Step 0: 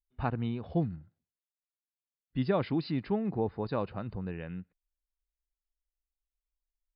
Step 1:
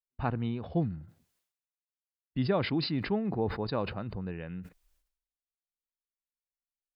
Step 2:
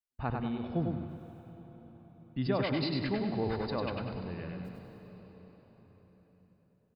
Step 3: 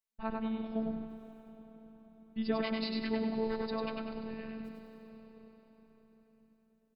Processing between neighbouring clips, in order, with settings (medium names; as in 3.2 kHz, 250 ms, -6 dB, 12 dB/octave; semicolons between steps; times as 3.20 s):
gate -46 dBFS, range -23 dB; decay stretcher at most 88 dB/s
feedback delay 99 ms, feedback 39%, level -4 dB; on a send at -10 dB: reverberation RT60 5.0 s, pre-delay 85 ms; on the sum: trim -3.5 dB
robot voice 222 Hz